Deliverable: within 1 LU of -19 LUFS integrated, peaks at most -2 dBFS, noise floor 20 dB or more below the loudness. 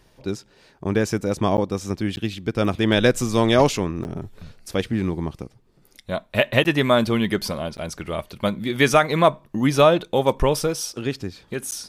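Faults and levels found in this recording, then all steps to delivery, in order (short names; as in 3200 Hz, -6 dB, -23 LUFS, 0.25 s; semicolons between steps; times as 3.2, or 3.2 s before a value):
dropouts 6; longest dropout 9.8 ms; loudness -22.0 LUFS; peak -3.5 dBFS; loudness target -19.0 LUFS
-> interpolate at 1.57/2.16/4.04/6.64/7.77/11.71, 9.8 ms; gain +3 dB; limiter -2 dBFS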